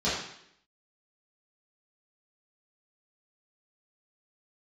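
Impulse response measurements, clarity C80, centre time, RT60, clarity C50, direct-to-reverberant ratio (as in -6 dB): 5.0 dB, 58 ms, 0.70 s, 1.0 dB, -11.5 dB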